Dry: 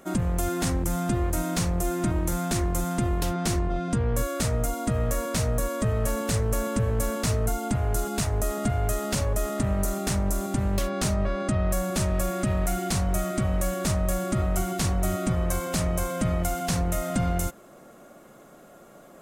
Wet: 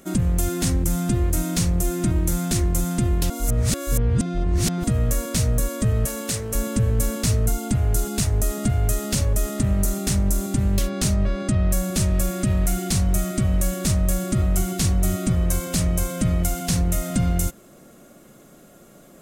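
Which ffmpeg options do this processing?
-filter_complex "[0:a]asettb=1/sr,asplit=3[a][b][c];[a]atrim=end=6.054[d];[b]atrim=start=6.05:end=6.55,asetpts=PTS-STARTPTS,afade=t=in:d=0.004:c=qsin,afade=t=out:st=0.496:d=0.004:c=qsin,highpass=f=330:p=1[e];[c]atrim=start=6.546[f];[d][e]acrossfade=d=0.004:c1=hsin:c2=qsin[g];[g][f]acrossfade=d=0.004:c1=qsin:c2=hsin,asplit=3[h][i][j];[h]atrim=end=3.302[k];[i]atrim=start=3.298:end=4.842,asetpts=PTS-STARTPTS,areverse[l];[j]atrim=start=4.838[m];[k][l]acrossfade=d=0.004:c1=hsin:c2=hsin[n];[n][m]acrossfade=d=0.004:c1=hsin:c2=hsin,equalizer=f=920:w=0.55:g=-10.5,acontrast=55"

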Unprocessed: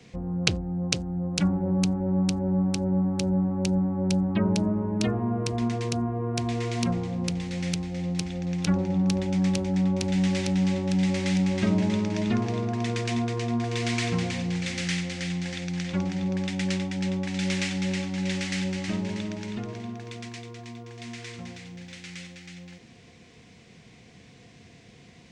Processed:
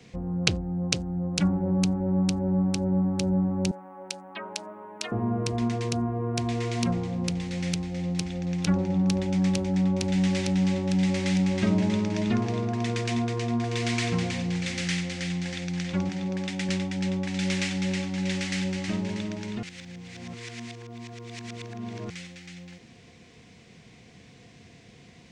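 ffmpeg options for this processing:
-filter_complex "[0:a]asettb=1/sr,asplit=3[a][b][c];[a]atrim=end=3.714[d];[b]atrim=start=3.71:end=5.12,asetpts=PTS-STARTPTS,afade=t=in:d=0.004:c=qsin,afade=t=out:st=1.406:d=0.004:c=qsin,highpass=830[e];[c]atrim=start=5.116[f];[d][e]acrossfade=d=0.004:c1=hsin:c2=qsin[g];[g][f]acrossfade=d=0.004:c1=qsin:c2=hsin,asettb=1/sr,asplit=3[h][i][j];[h]atrim=end=16.094[k];[i]atrim=start=16.09:end=16.69,asetpts=PTS-STARTPTS,afade=t=in:d=0.004:c=qsin,afade=t=out:st=0.596:d=0.004:c=qsin,highpass=f=170:p=1[l];[j]atrim=start=16.686[m];[k][l]acrossfade=d=0.004:c1=hsin:c2=qsin[n];[n][m]acrossfade=d=0.004:c1=qsin:c2=hsin,asplit=3[o][p][q];[o]atrim=end=19.632[r];[p]atrim=start=19.628:end=22.102,asetpts=PTS-STARTPTS,areverse[s];[q]atrim=start=22.098[t];[r][s]acrossfade=d=0.004:c1=hsin:c2=hsin[u];[u][t]acrossfade=d=0.004:c1=hsin:c2=hsin"

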